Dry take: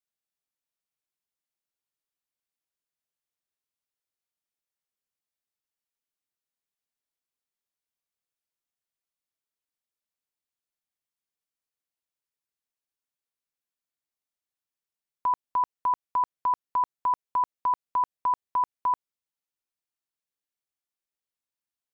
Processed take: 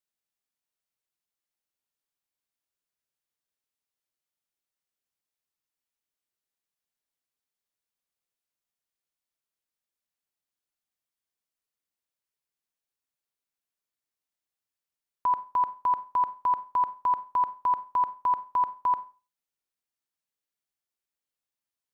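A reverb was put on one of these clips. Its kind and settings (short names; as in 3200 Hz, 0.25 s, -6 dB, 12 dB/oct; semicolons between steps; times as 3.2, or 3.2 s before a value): Schroeder reverb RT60 0.33 s, combs from 31 ms, DRR 13.5 dB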